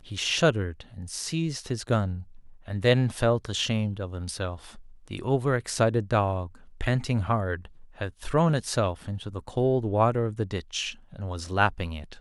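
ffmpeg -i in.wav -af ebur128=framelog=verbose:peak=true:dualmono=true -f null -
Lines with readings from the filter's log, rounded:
Integrated loudness:
  I:         -24.3 LUFS
  Threshold: -34.7 LUFS
Loudness range:
  LRA:         1.3 LU
  Threshold: -44.7 LUFS
  LRA low:   -25.4 LUFS
  LRA high:  -24.1 LUFS
True peak:
  Peak:       -7.6 dBFS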